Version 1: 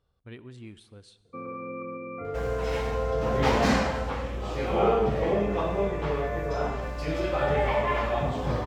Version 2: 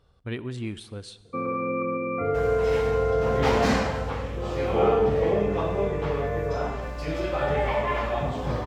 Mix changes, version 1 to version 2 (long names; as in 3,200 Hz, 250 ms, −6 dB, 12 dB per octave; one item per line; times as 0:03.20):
speech +11.5 dB
first sound +9.0 dB